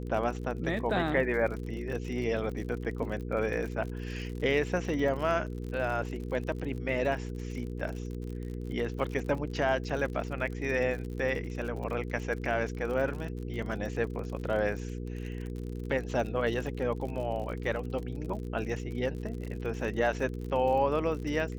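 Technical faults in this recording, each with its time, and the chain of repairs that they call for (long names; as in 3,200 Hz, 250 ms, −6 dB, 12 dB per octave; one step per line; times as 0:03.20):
surface crackle 54 per second −37 dBFS
mains hum 60 Hz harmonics 8 −37 dBFS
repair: click removal
hum removal 60 Hz, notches 8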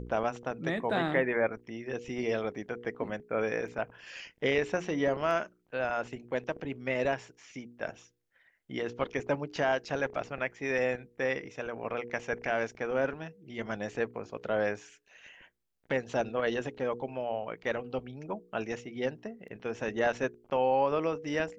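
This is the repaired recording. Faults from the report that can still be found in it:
none of them is left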